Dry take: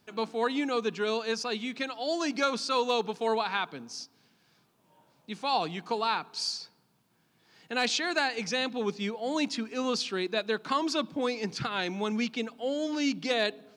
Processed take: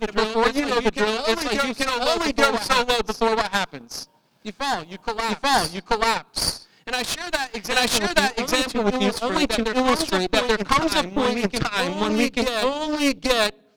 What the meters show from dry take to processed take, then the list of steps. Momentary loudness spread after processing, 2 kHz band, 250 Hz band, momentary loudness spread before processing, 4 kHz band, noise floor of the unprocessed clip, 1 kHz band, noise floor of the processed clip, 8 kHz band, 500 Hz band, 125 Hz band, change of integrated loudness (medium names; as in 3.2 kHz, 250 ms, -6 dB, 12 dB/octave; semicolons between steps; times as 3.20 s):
7 LU, +10.0 dB, +8.0 dB, 6 LU, +9.5 dB, -69 dBFS, +9.5 dB, -57 dBFS, +11.5 dB, +8.5 dB, +10.5 dB, +8.5 dB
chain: Chebyshev shaper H 4 -13 dB, 8 -19 dB, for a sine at -14.5 dBFS; transient shaper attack +4 dB, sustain -10 dB; reverse echo 834 ms -5 dB; trim +6 dB